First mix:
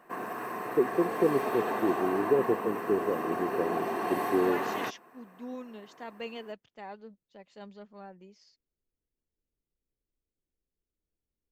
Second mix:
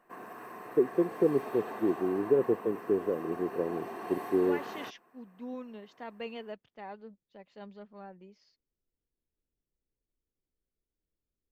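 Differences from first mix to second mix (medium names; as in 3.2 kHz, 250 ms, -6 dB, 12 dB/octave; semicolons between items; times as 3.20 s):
second voice: add distance through air 140 m; background -9.0 dB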